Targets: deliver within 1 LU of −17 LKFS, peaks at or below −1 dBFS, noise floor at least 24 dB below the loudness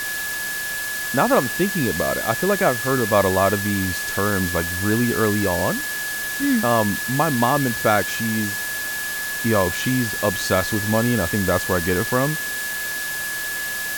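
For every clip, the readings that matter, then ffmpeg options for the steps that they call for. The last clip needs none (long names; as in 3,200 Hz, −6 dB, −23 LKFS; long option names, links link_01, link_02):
interfering tone 1,700 Hz; level of the tone −26 dBFS; background noise floor −27 dBFS; target noise floor −45 dBFS; integrated loudness −20.5 LKFS; sample peak −2.5 dBFS; target loudness −17.0 LKFS
→ -af "bandreject=frequency=1700:width=30"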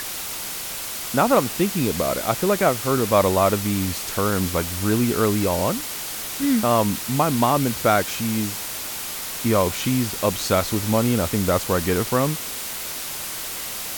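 interfering tone none found; background noise floor −31 dBFS; target noise floor −46 dBFS
→ -af "afftdn=noise_reduction=15:noise_floor=-31"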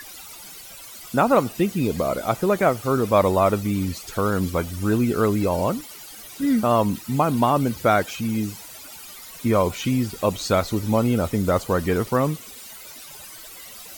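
background noise floor −41 dBFS; target noise floor −46 dBFS
→ -af "afftdn=noise_reduction=6:noise_floor=-41"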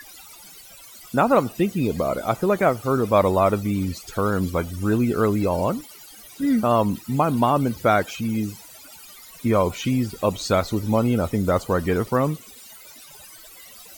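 background noise floor −45 dBFS; target noise floor −46 dBFS
→ -af "afftdn=noise_reduction=6:noise_floor=-45"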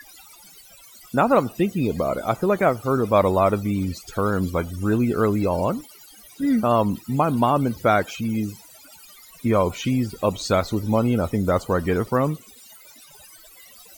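background noise floor −48 dBFS; integrated loudness −22.0 LKFS; sample peak −4.0 dBFS; target loudness −17.0 LKFS
→ -af "volume=5dB,alimiter=limit=-1dB:level=0:latency=1"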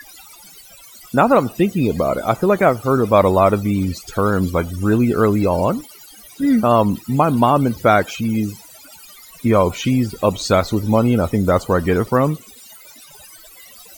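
integrated loudness −17.0 LKFS; sample peak −1.0 dBFS; background noise floor −43 dBFS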